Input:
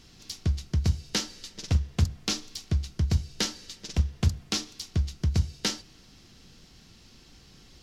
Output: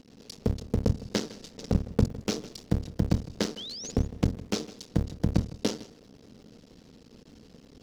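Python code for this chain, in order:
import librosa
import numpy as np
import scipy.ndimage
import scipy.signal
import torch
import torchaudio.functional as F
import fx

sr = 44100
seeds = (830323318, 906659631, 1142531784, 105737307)

p1 = fx.cycle_switch(x, sr, every=2, mode='muted')
p2 = fx.spec_paint(p1, sr, seeds[0], shape='rise', start_s=3.57, length_s=0.34, low_hz=2900.0, high_hz=7100.0, level_db=-36.0)
p3 = fx.small_body(p2, sr, hz=(240.0, 440.0), ring_ms=20, db=15)
p4 = p3 + fx.echo_single(p3, sr, ms=158, db=-18.0, dry=0)
y = p4 * librosa.db_to_amplitude(-4.0)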